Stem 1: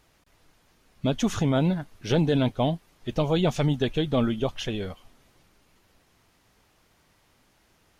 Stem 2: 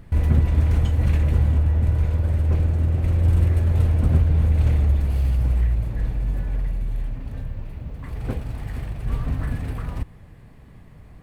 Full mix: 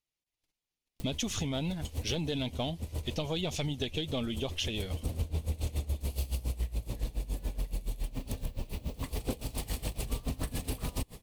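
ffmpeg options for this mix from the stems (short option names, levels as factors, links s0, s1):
-filter_complex "[0:a]aeval=exprs='if(lt(val(0),0),0.708*val(0),val(0))':c=same,agate=range=0.0316:threshold=0.00158:ratio=16:detection=peak,highshelf=f=2300:g=-11.5,volume=0.794,asplit=2[s0][s1];[1:a]equalizer=f=125:t=o:w=1:g=-4,equalizer=f=250:t=o:w=1:g=4,equalizer=f=500:t=o:w=1:g=6,equalizer=f=1000:t=o:w=1:g=4,equalizer=f=2000:t=o:w=1:g=-8,aeval=exprs='val(0)*pow(10,-20*(0.5-0.5*cos(2*PI*7.1*n/s))/20)':c=same,adelay=1000,volume=1.33[s2];[s1]apad=whole_len=539332[s3];[s2][s3]sidechaincompress=threshold=0.00501:ratio=5:attack=16:release=435[s4];[s0][s4]amix=inputs=2:normalize=0,aexciter=amount=7.7:drive=3.7:freq=2200,acompressor=threshold=0.0316:ratio=6"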